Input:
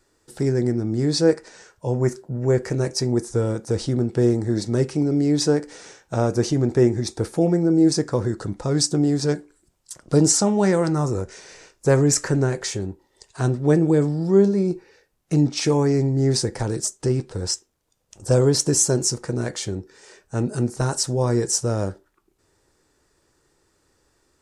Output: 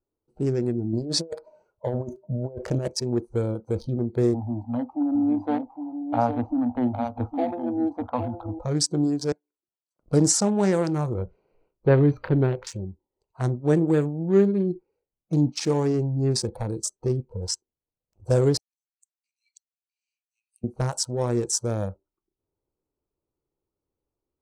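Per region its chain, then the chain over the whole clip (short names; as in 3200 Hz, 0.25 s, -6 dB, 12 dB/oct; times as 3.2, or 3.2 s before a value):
0.93–2.88 bell 610 Hz +9 dB 0.23 oct + negative-ratio compressor -22 dBFS, ratio -0.5
4.34–8.59 EQ curve 110 Hz 0 dB, 160 Hz -25 dB, 260 Hz +8 dB, 370 Hz -15 dB, 520 Hz -5 dB, 790 Hz +12 dB, 3300 Hz -18 dB + echo 0.808 s -6.5 dB
9.32–9.99 HPF 1400 Hz 6 dB/oct + compressor 2:1, threshold -59 dBFS
11.18–12.67 LPF 3900 Hz 24 dB/oct + low shelf 420 Hz +3 dB + notches 60/120/180/240 Hz
13.93–14.64 median filter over 25 samples + bell 1700 Hz +8 dB 0.61 oct
18.57–20.64 steep high-pass 2200 Hz 96 dB/oct + flipped gate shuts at -23 dBFS, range -41 dB
whole clip: Wiener smoothing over 25 samples; spectral noise reduction 16 dB; gain -2.5 dB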